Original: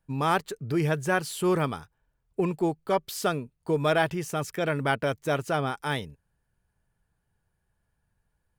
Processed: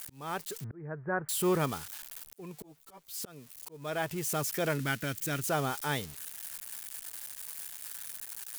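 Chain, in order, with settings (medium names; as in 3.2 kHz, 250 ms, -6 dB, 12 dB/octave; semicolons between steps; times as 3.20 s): zero-crossing glitches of -26.5 dBFS; 0.64–1.29 s: steep low-pass 1.8 kHz 48 dB/octave; 4.78–5.47 s: high-order bell 690 Hz -10.5 dB; slow attack 614 ms; 2.62–3.14 s: three-phase chorus; trim -3.5 dB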